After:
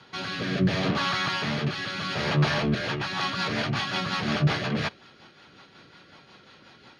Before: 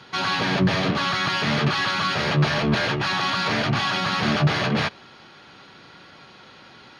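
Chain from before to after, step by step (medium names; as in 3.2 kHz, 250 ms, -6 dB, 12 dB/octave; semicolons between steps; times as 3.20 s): rotary cabinet horn 0.7 Hz, later 5.5 Hz, at 2.44 s; trim -2.5 dB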